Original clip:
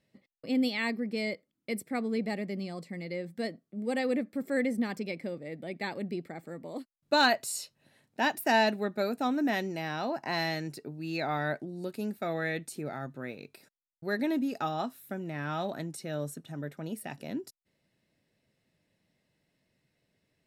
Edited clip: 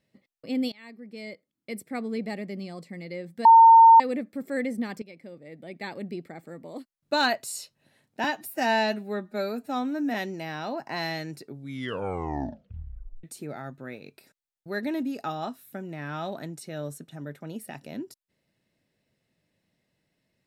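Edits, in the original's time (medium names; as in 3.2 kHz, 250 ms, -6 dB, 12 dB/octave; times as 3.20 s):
0.72–1.98 s: fade in, from -23.5 dB
3.45–4.00 s: bleep 910 Hz -9 dBFS
5.02–5.98 s: fade in linear, from -13.5 dB
8.24–9.51 s: stretch 1.5×
10.79 s: tape stop 1.81 s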